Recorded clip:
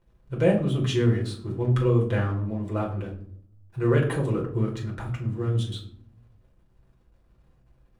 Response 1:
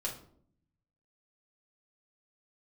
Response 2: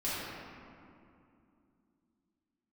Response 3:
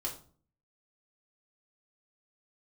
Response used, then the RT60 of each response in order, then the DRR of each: 1; 0.60, 2.6, 0.45 s; -2.5, -11.0, -2.5 dB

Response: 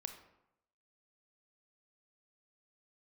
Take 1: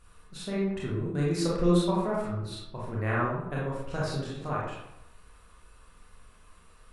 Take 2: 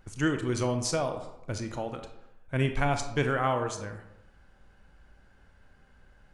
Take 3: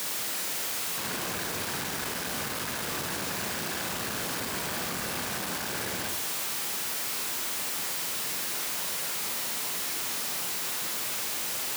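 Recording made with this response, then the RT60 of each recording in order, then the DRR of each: 2; 0.85, 0.85, 0.85 s; -6.5, 6.0, 2.0 dB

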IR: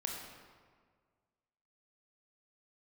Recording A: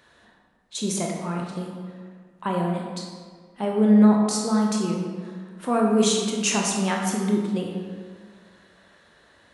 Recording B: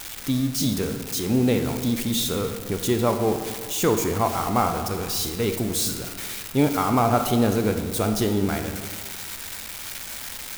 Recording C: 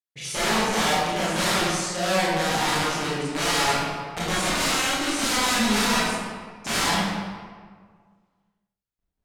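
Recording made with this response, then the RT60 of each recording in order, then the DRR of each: A; 1.7, 1.7, 1.7 s; -0.5, 6.0, -9.5 dB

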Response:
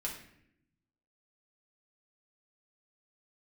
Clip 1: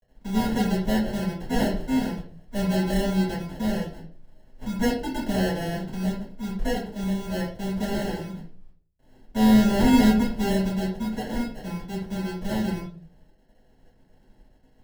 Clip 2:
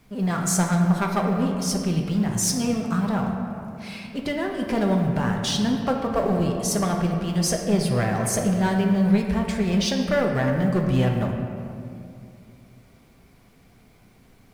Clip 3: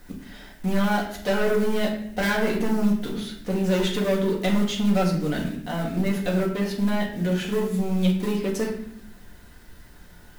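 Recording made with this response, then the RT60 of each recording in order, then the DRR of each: 3; 0.45, 2.4, 0.70 s; -9.0, 1.5, -3.0 dB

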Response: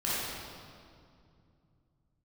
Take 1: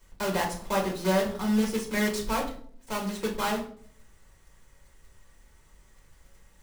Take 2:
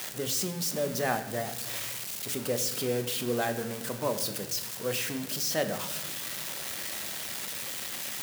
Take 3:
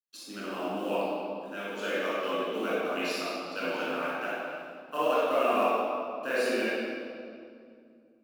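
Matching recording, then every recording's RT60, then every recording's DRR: 3; 0.55 s, not exponential, 2.4 s; -2.0, 6.5, -10.0 dB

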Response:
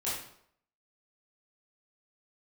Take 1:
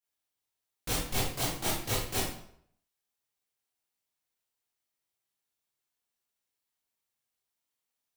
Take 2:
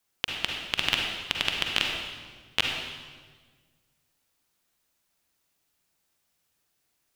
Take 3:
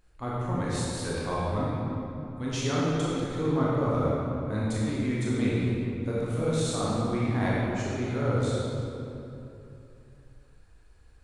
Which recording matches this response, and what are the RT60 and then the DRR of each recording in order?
1; 0.70, 1.5, 3.0 s; -10.0, 0.0, -7.5 dB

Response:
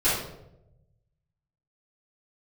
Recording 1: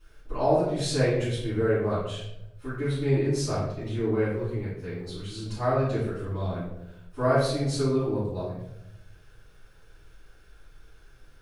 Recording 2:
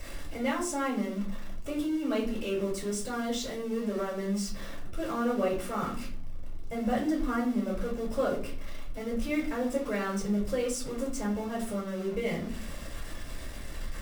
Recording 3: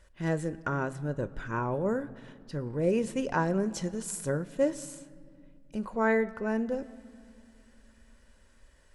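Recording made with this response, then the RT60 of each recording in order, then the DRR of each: 1; 0.85 s, 0.50 s, not exponential; -14.5, -4.0, 14.0 dB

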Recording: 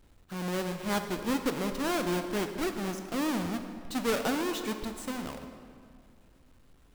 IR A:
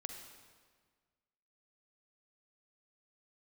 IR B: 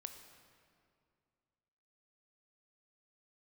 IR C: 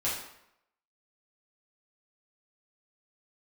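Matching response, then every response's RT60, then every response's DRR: B; 1.6, 2.3, 0.80 s; 4.5, 6.5, -8.5 dB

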